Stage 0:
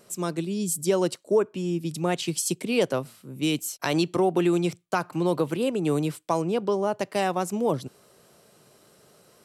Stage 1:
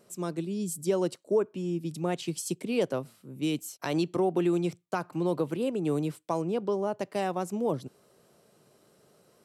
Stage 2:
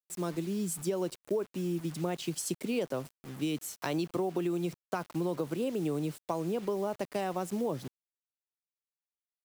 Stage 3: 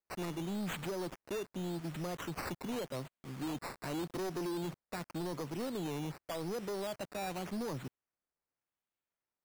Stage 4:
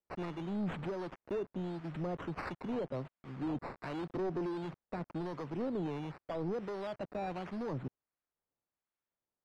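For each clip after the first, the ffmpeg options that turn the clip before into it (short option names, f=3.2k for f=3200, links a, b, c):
-af "equalizer=f=280:w=0.32:g=5,volume=-8.5dB"
-af "acrusher=bits=7:mix=0:aa=0.000001,acompressor=threshold=-28dB:ratio=6"
-af "aphaser=in_gain=1:out_gain=1:delay=1.8:decay=0.21:speed=0.23:type=triangular,acrusher=samples=11:mix=1:aa=0.000001:lfo=1:lforange=6.6:lforate=0.87,asoftclip=type=hard:threshold=-33dB,volume=-2dB"
-filter_complex "[0:a]acrossover=split=870[a][b];[a]aeval=exprs='val(0)*(1-0.5/2+0.5/2*cos(2*PI*1.4*n/s))':c=same[c];[b]aeval=exprs='val(0)*(1-0.5/2-0.5/2*cos(2*PI*1.4*n/s))':c=same[d];[c][d]amix=inputs=2:normalize=0,adynamicsmooth=sensitivity=3:basefreq=2.3k,volume=3.5dB"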